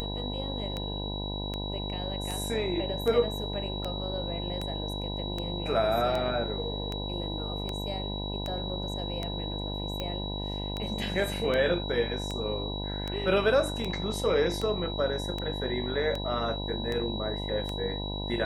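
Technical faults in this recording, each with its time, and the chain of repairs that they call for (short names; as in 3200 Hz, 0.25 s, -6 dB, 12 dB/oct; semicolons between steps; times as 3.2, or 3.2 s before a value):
buzz 50 Hz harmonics 20 -35 dBFS
tick 78 rpm -19 dBFS
tone 3900 Hz -37 dBFS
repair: de-click; notch 3900 Hz, Q 30; de-hum 50 Hz, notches 20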